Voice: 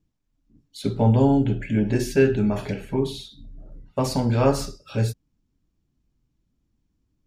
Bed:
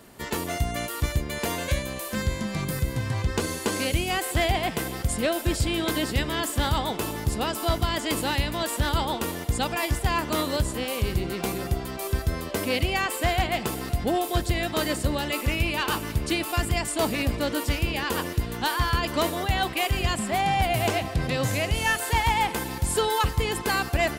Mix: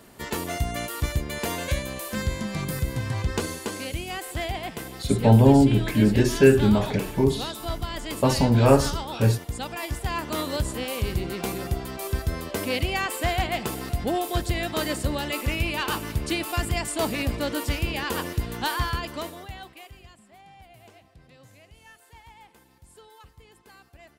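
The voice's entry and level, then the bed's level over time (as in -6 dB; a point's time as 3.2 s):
4.25 s, +2.5 dB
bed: 3.38 s -0.5 dB
3.79 s -6.5 dB
9.62 s -6.5 dB
10.7 s -1 dB
18.78 s -1 dB
20.2 s -27 dB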